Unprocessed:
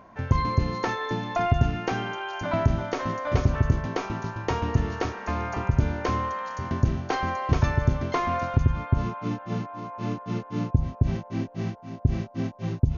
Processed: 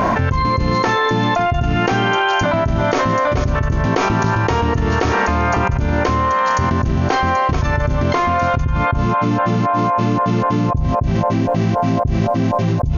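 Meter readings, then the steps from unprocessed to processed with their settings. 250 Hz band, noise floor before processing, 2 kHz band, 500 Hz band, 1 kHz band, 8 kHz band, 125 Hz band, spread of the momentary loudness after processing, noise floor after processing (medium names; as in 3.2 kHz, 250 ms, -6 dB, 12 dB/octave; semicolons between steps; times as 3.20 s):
+11.0 dB, -45 dBFS, +13.5 dB, +12.5 dB, +13.5 dB, no reading, +7.5 dB, 2 LU, -19 dBFS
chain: level flattener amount 100%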